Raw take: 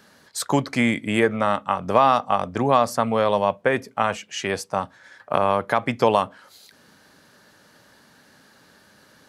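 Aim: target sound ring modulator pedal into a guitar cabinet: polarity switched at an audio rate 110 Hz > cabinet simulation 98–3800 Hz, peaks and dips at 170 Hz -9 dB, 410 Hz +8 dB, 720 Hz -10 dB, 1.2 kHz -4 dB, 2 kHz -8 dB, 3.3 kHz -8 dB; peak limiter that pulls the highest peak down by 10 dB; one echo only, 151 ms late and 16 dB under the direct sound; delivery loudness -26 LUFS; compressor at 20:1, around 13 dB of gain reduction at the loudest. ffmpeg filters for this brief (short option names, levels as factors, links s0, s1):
-af "acompressor=threshold=0.0631:ratio=20,alimiter=limit=0.0891:level=0:latency=1,aecho=1:1:151:0.158,aeval=exprs='val(0)*sgn(sin(2*PI*110*n/s))':c=same,highpass=98,equalizer=f=170:t=q:w=4:g=-9,equalizer=f=410:t=q:w=4:g=8,equalizer=f=720:t=q:w=4:g=-10,equalizer=f=1200:t=q:w=4:g=-4,equalizer=f=2000:t=q:w=4:g=-8,equalizer=f=3300:t=q:w=4:g=-8,lowpass=f=3800:w=0.5412,lowpass=f=3800:w=1.3066,volume=2.99"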